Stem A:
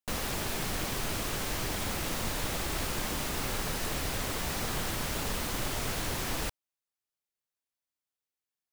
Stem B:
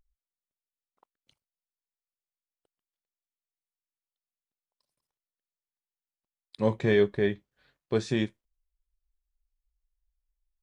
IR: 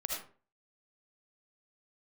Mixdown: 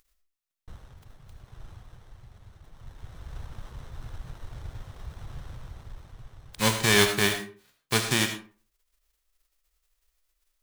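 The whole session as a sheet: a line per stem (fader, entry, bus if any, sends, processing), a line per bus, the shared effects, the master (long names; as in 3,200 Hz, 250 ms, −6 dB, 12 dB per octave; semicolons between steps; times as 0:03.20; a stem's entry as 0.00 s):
+3.0 dB, 0.60 s, no send, reverb reduction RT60 1.8 s; drawn EQ curve 120 Hz 0 dB, 300 Hz −28 dB, 4,100 Hz −4 dB, 8,100 Hz −22 dB; windowed peak hold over 17 samples; automatic ducking −10 dB, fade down 1.00 s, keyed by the second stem
−1.5 dB, 0.00 s, send −3 dB, spectral envelope flattened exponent 0.3; parametric band 580 Hz −4.5 dB 1.2 octaves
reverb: on, RT60 0.40 s, pre-delay 35 ms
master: no processing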